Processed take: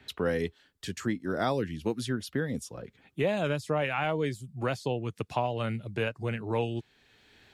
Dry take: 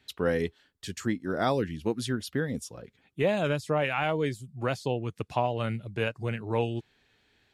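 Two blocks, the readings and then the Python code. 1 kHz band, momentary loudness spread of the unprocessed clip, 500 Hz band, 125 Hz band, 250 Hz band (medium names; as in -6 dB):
-1.5 dB, 9 LU, -1.5 dB, -1.0 dB, -1.0 dB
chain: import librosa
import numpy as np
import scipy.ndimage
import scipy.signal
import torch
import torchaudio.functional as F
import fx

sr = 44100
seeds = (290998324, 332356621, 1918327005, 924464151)

y = fx.band_squash(x, sr, depth_pct=40)
y = y * librosa.db_to_amplitude(-1.5)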